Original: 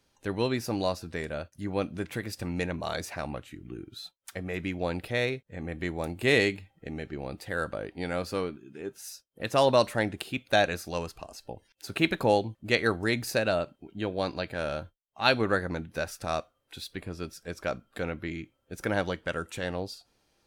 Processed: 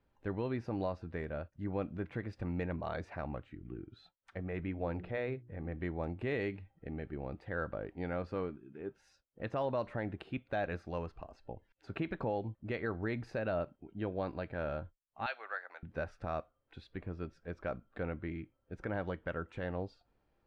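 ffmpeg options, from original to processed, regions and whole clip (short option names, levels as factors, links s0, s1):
-filter_complex "[0:a]asettb=1/sr,asplit=3[s0][s1][s2];[s0]atrim=end=4.594[s3];[s1]atrim=start=4.59:end=5.75,asetpts=PTS-STARTPTS,afade=t=in:d=0.004:c=qsin,afade=t=out:st=1.156:d=0.004:c=qsin,lowpass=f=3600:p=1,bandreject=f=60:t=h:w=6,bandreject=f=120:t=h:w=6,bandreject=f=180:t=h:w=6,bandreject=f=240:t=h:w=6,bandreject=f=300:t=h:w=6,bandreject=f=360:t=h:w=6,bandreject=f=420:t=h:w=6,acompressor=mode=upward:threshold=0.0158:ratio=2.5:attack=3.2:release=140:knee=2.83:detection=peak[s4];[s2]atrim=start=5.746[s5];[s3][s4]acrossfade=d=0.004:c1=hsin:c2=qsin[s6];[s6][s5]acrossfade=d=0.004:c1=qsin:c2=hsin,asettb=1/sr,asplit=3[s7][s8][s9];[s7]atrim=end=15.264[s10];[s8]atrim=start=15.26:end=15.83,asetpts=PTS-STARTPTS,afade=t=in:d=0.004:c=qsin,afade=t=out:st=0.566:d=0.004:c=qsin,highpass=f=790:w=0.5412,highpass=f=790:w=1.3066,equalizer=f=1000:w=2.1:g=-8,acompressor=mode=upward:threshold=0.01:ratio=2.5:attack=3.2:release=140:knee=2.83:detection=peak[s11];[s9]atrim=start=15.826[s12];[s10][s11]acrossfade=d=0.004:c1=hsin:c2=qsin[s13];[s13][s12]acrossfade=d=0.004:c1=qsin:c2=hsin,lowpass=1800,lowshelf=f=73:g=9,alimiter=limit=0.1:level=0:latency=1:release=119,volume=0.531"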